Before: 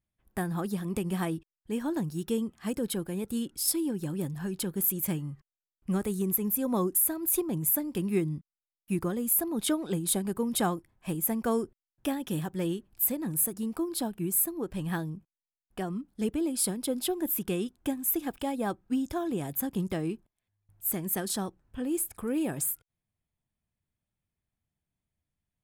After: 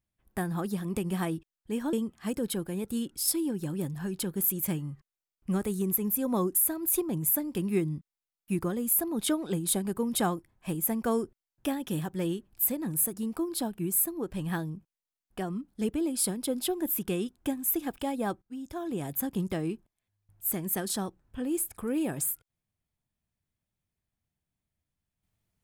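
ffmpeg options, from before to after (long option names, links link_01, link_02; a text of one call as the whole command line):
ffmpeg -i in.wav -filter_complex "[0:a]asplit=3[link_01][link_02][link_03];[link_01]atrim=end=1.932[link_04];[link_02]atrim=start=2.328:end=18.82,asetpts=PTS-STARTPTS,afade=type=out:start_time=16.488:duration=0.004:curve=hsin:silence=0.0891251[link_05];[link_03]atrim=start=18.82,asetpts=PTS-STARTPTS,afade=type=in:duration=0.65:silence=0.0891251[link_06];[link_05][link_06]concat=n=2:v=0:a=1[link_07];[link_04][link_07]acrossfade=duration=0.004:curve1=hsin:curve2=hsin" out.wav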